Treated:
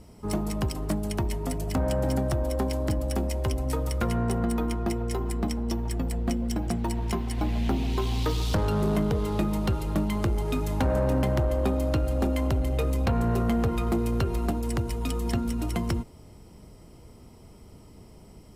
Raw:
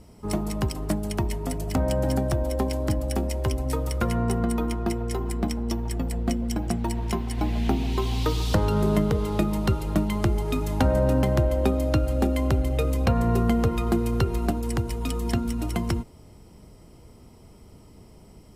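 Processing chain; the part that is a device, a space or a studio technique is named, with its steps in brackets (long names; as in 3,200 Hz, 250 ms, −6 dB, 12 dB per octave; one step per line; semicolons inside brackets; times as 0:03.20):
saturation between pre-emphasis and de-emphasis (high-shelf EQ 9,000 Hz +11 dB; soft clipping −18.5 dBFS, distortion −15 dB; high-shelf EQ 9,000 Hz −11 dB)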